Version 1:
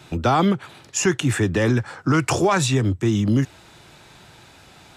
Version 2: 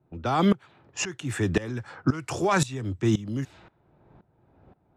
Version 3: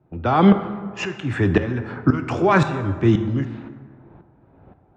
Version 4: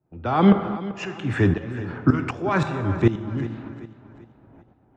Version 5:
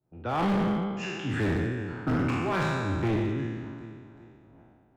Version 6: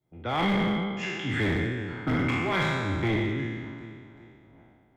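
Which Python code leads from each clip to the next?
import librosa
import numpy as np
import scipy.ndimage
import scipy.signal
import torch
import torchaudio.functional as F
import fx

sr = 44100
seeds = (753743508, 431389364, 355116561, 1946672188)

y1 = fx.env_lowpass(x, sr, base_hz=580.0, full_db=-17.0)
y1 = fx.tremolo_decay(y1, sr, direction='swelling', hz=1.9, depth_db=19)
y2 = scipy.signal.sosfilt(scipy.signal.butter(2, 2700.0, 'lowpass', fs=sr, output='sos'), y1)
y2 = fx.rev_plate(y2, sr, seeds[0], rt60_s=1.8, hf_ratio=0.5, predelay_ms=0, drr_db=8.0)
y2 = y2 * librosa.db_to_amplitude(6.5)
y3 = fx.tremolo_shape(y2, sr, shape='saw_up', hz=1.3, depth_pct=85)
y3 = fx.echo_feedback(y3, sr, ms=388, feedback_pct=40, wet_db=-15.0)
y3 = y3 * librosa.db_to_amplitude(1.5)
y4 = fx.spec_trails(y3, sr, decay_s=1.64)
y4 = np.clip(y4, -10.0 ** (-15.5 / 20.0), 10.0 ** (-15.5 / 20.0))
y4 = y4 * librosa.db_to_amplitude(-7.5)
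y5 = fx.small_body(y4, sr, hz=(2100.0, 3300.0), ring_ms=25, db=17)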